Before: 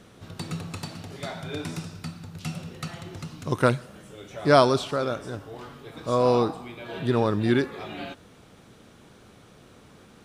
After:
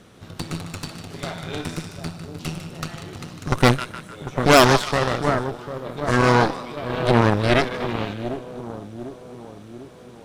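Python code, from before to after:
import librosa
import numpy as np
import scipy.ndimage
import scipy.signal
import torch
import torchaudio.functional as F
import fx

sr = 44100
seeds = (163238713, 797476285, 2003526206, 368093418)

y = fx.echo_split(x, sr, split_hz=1000.0, low_ms=747, high_ms=152, feedback_pct=52, wet_db=-8)
y = fx.cheby_harmonics(y, sr, harmonics=(8,), levels_db=(-10,), full_scale_db=-3.5)
y = y * librosa.db_to_amplitude(2.0)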